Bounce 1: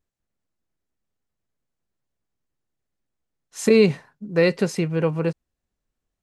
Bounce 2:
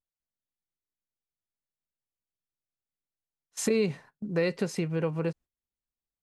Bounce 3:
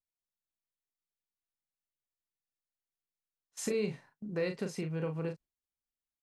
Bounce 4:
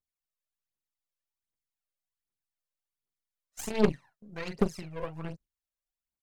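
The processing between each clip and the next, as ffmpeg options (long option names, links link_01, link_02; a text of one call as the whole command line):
ffmpeg -i in.wav -af "agate=range=-17dB:threshold=-41dB:ratio=16:detection=peak,acompressor=threshold=-31dB:ratio=2" out.wav
ffmpeg -i in.wav -filter_complex "[0:a]asplit=2[link_01][link_02];[link_02]adelay=38,volume=-6.5dB[link_03];[link_01][link_03]amix=inputs=2:normalize=0,volume=-7.5dB" out.wav
ffmpeg -i in.wav -af "aphaser=in_gain=1:out_gain=1:delay=2:decay=0.76:speed=1.3:type=triangular,aeval=exprs='0.316*(cos(1*acos(clip(val(0)/0.316,-1,1)))-cos(1*PI/2))+0.0224*(cos(7*acos(clip(val(0)/0.316,-1,1)))-cos(7*PI/2))+0.0398*(cos(8*acos(clip(val(0)/0.316,-1,1)))-cos(8*PI/2))':channel_layout=same" out.wav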